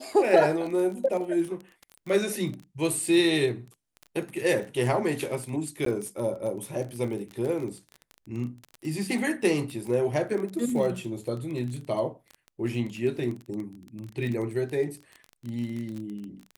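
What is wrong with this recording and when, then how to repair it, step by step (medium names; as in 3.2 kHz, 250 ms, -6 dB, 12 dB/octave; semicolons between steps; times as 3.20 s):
crackle 25 per s -32 dBFS
5.85–5.86 s: dropout 13 ms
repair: de-click; interpolate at 5.85 s, 13 ms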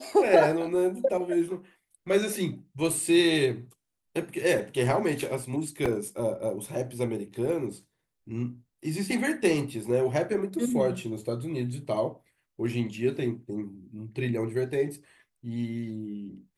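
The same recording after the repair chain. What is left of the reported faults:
nothing left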